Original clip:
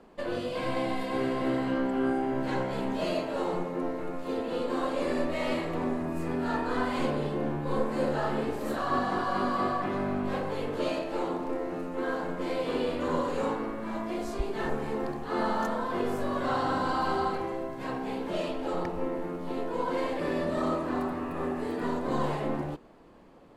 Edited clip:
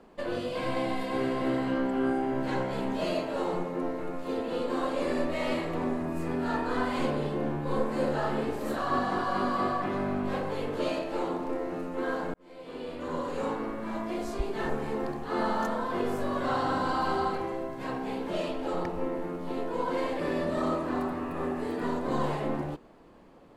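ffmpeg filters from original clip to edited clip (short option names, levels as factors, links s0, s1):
-filter_complex "[0:a]asplit=2[s0][s1];[s0]atrim=end=12.34,asetpts=PTS-STARTPTS,afade=t=out:st=12.336:d=0.004:c=hsin[s2];[s1]atrim=start=12.34,asetpts=PTS-STARTPTS,afade=t=in:d=1.37[s3];[s2][s3]concat=n=2:v=0:a=1"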